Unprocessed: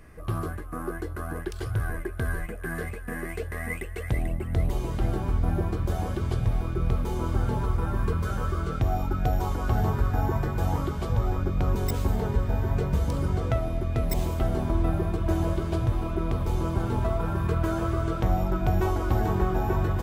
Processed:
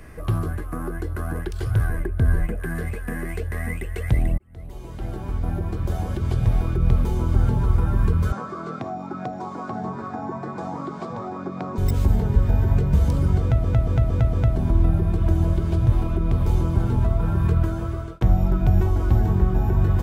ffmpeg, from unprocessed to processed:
-filter_complex "[0:a]asettb=1/sr,asplit=3[a][b][c];[a]atrim=end=2.004[d];[b]atrim=start=2:end=2.6,asetpts=PTS-STARTPTS,afade=t=in:d=0.004:c=qsin,afade=t=out:st=0.596:d=0.004:c=qsin,tiltshelf=f=970:g=3.5[e];[c]atrim=start=2.596[f];[d][e]acrossfade=d=0.004:c1=hsin:c2=qsin[g];[g][f]acrossfade=d=0.004:c1=qsin:c2=hsin,asettb=1/sr,asplit=3[h][i][j];[h]atrim=end=8.324[k];[i]atrim=start=8.32:end=11.78,asetpts=PTS-STARTPTS,afade=t=in:d=0.004:c=qsin,afade=t=out:st=3.456:d=0.004:c=qsin,highpass=f=200:w=0.5412,highpass=f=200:w=1.3066,equalizer=f=700:t=q:w=4:g=7,equalizer=f=1.1k:t=q:w=4:g=9,equalizer=f=3k:t=q:w=4:g=-8,equalizer=f=6.1k:t=q:w=4:g=-3,lowpass=f=7.4k:w=0.5412,lowpass=f=7.4k:w=1.3066[l];[j]atrim=start=11.776[m];[k][l]acrossfade=d=0.004:c1=hsin:c2=qsin[n];[n][m]acrossfade=d=0.004:c1=qsin:c2=hsin,asplit=8[o][p][q][r][s][t][u][v];[o]atrim=end=4.38,asetpts=PTS-STARTPTS,afade=t=out:st=4.376:d=0.004:c=hsin[w];[p]atrim=start=4.38:end=13.642,asetpts=PTS-STARTPTS,afade=t=in:d=2.59[x];[q]atrim=start=13.408:end=13.642[y];[r]atrim=start=13.408:end=13.642[z];[s]atrim=start=13.408:end=13.642[aa];[t]atrim=start=13.408:end=13.642[ab];[u]atrim=start=14.558:end=18.21,asetpts=PTS-STARTPTS,afade=t=out:st=3.012:d=0.64[ac];[v]atrim=start=18.21,asetpts=PTS-STARTPTS,afade=t=in:d=0.004:c=hsin[ad];[w][x]concat=n=2:v=0:a=1[ae];[ae][y]acrossfade=d=0.004:c1=hsin:c2=hsin[af];[af][z]acrossfade=d=0.004:c1=hsin:c2=hsin[ag];[ag][aa]acrossfade=d=0.004:c1=hsin:c2=hsin[ah];[ah][ab]acrossfade=d=0.004:c1=hsin:c2=hsin[ai];[ac][ad]concat=n=2:v=0:a=1[aj];[ai][aj]acrossfade=d=0.004:c1=hsin:c2=hsin,bandreject=f=1.2k:w=22,acrossover=split=230[ak][al];[al]acompressor=threshold=-39dB:ratio=6[am];[ak][am]amix=inputs=2:normalize=0,volume=7.5dB"

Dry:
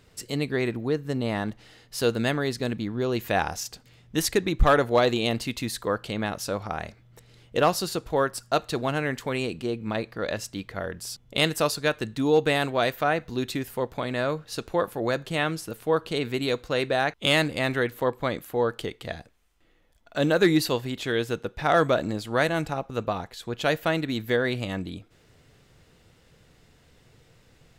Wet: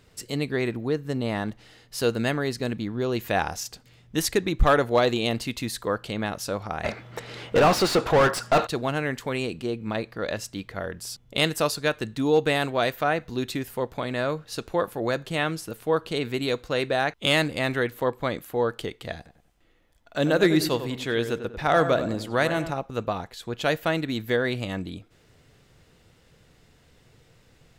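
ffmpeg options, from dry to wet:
-filter_complex "[0:a]asettb=1/sr,asplit=3[a][b][c];[a]atrim=end=2.014[d];[b]atrim=start=2.01:end=2.73,asetpts=PTS-STARTPTS,afade=t=in:d=0.004:c=qsin,afade=t=out:st=0.716:d=0.004:c=qsin,bandreject=f=3.5k:w=13[e];[c]atrim=start=2.726[f];[d][e]acrossfade=d=0.004:c1=hsin:c2=qsin[g];[g][f]acrossfade=d=0.004:c1=qsin:c2=hsin,asettb=1/sr,asplit=3[h][i][j];[h]atrim=end=6.844[k];[i]atrim=start=6.84:end=8.67,asetpts=PTS-STARTPTS,afade=t=in:d=0.004:c=qsin,afade=t=out:st=1.826:d=0.004:c=qsin,asplit=2[l][m];[m]highpass=f=720:p=1,volume=31dB,asoftclip=type=tanh:threshold=-10.5dB[n];[l][n]amix=inputs=2:normalize=0,lowpass=f=1.6k:p=1,volume=-6dB[o];[j]atrim=start=8.666[p];[k][o]acrossfade=d=0.004:c1=hsin:c2=qsin[q];[q][p]acrossfade=d=0.004:c1=qsin:c2=hsin,asettb=1/sr,asplit=3[r][s][t];[r]atrim=end=19.164[u];[s]atrim=start=19.16:end=22.71,asetpts=PTS-STARTPTS,afade=t=in:d=0.004:c=qsin,afade=t=out:st=3.546:d=0.004:c=qsin,asplit=2[v][w];[w]adelay=95,lowpass=f=2k:p=1,volume=-9.5dB,asplit=2[x][y];[y]adelay=95,lowpass=f=2k:p=1,volume=0.41,asplit=2[z][aa];[aa]adelay=95,lowpass=f=2k:p=1,volume=0.41,asplit=2[ab][ac];[ac]adelay=95,lowpass=f=2k:p=1,volume=0.41[ad];[v][x][z][ab][ad]amix=inputs=5:normalize=0,atrim=end_sample=156555[ae];[t]atrim=start=22.706[af];[u][ae]acrossfade=d=0.004:c1=hsin:c2=qsin[ag];[ag][af]acrossfade=d=0.004:c1=qsin:c2=hsin"

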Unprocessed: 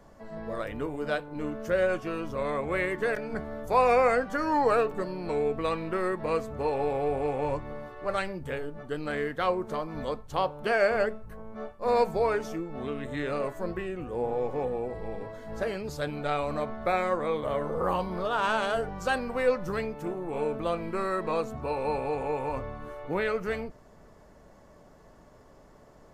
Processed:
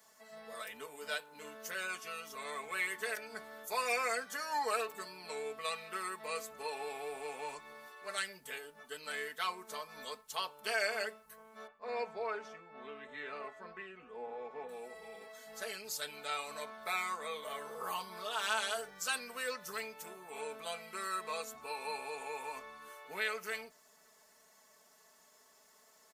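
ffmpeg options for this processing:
-filter_complex "[0:a]asettb=1/sr,asplit=3[a][b][c];[a]atrim=end=11.674[d];[b]atrim=start=11.67:end=14.69,asetpts=PTS-STARTPTS,afade=t=in:d=0.004:c=qsin,afade=t=out:st=3.016:d=0.004:c=qsin,lowpass=2.1k[e];[c]atrim=start=14.686[f];[d][e]acrossfade=d=0.004:c1=hsin:c2=qsin[g];[g][f]acrossfade=d=0.004:c1=qsin:c2=hsin,aderivative,aecho=1:1:4.6:0.97,volume=4.5dB"

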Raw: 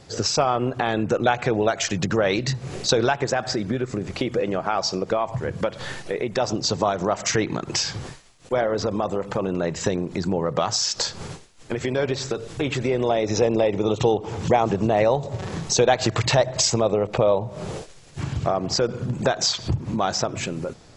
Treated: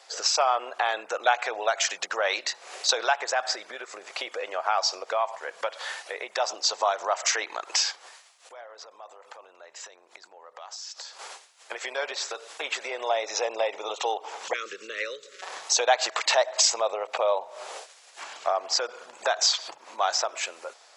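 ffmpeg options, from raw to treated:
-filter_complex "[0:a]asettb=1/sr,asplit=3[a][b][c];[a]atrim=end=7.914[d];[b]atrim=start=7.91:end=11.19,asetpts=PTS-STARTPTS,afade=t=in:d=0.004:c=qsin,afade=t=out:st=3.276:d=0.004:c=qsin,acompressor=threshold=-38dB:ratio=5:attack=3.2:release=140:knee=1:detection=peak[e];[c]atrim=start=11.186[f];[d][e]acrossfade=d=0.004:c1=hsin:c2=qsin[g];[g][f]acrossfade=d=0.004:c1=qsin:c2=hsin,asettb=1/sr,asplit=3[h][i][j];[h]atrim=end=14.534[k];[i]atrim=start=14.53:end=15.42,asetpts=PTS-STARTPTS,afade=t=in:d=0.004:c=qsin,afade=t=out:st=0.886:d=0.004:c=qsin,asuperstop=centerf=800:order=8:qfactor=0.96[l];[j]atrim=start=15.416[m];[k][l]acrossfade=d=0.004:c1=hsin:c2=qsin[n];[n][m]acrossfade=d=0.004:c1=qsin:c2=hsin,highpass=f=650:w=0.5412,highpass=f=650:w=1.3066"

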